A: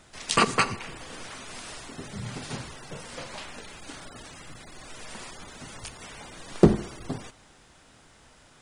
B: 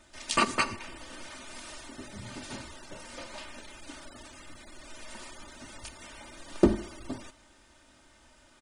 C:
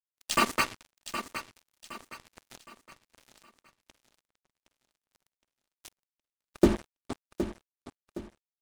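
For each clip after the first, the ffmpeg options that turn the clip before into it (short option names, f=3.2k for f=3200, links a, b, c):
-af "aecho=1:1:3.3:0.68,volume=-5.5dB"
-af "acrusher=bits=4:mix=0:aa=0.5,aecho=1:1:766|1532|2298|3064:0.299|0.113|0.0431|0.0164"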